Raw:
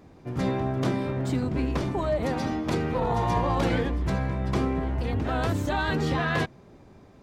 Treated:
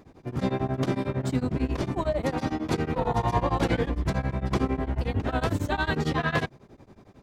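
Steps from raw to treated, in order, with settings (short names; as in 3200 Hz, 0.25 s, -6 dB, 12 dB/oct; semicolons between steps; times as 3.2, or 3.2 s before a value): beating tremolo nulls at 11 Hz; gain +2.5 dB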